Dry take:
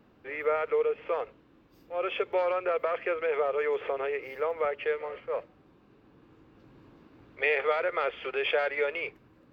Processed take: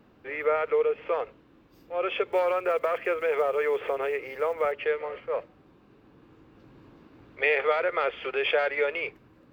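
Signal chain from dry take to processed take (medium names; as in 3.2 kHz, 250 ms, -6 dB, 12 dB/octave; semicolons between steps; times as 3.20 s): 2.28–4.73 s: block-companded coder 7-bit; trim +2.5 dB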